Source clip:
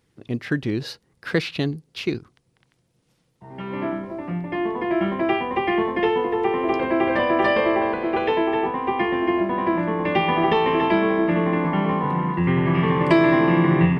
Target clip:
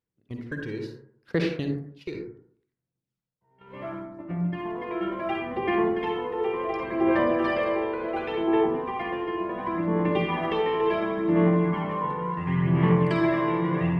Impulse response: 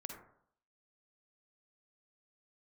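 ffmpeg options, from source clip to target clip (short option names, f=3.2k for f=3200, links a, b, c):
-filter_complex "[0:a]agate=range=-19dB:threshold=-29dB:ratio=16:detection=peak,aphaser=in_gain=1:out_gain=1:delay=2.2:decay=0.54:speed=0.7:type=sinusoidal[a];[1:a]atrim=start_sample=2205[b];[a][b]afir=irnorm=-1:irlink=0,volume=-5.5dB"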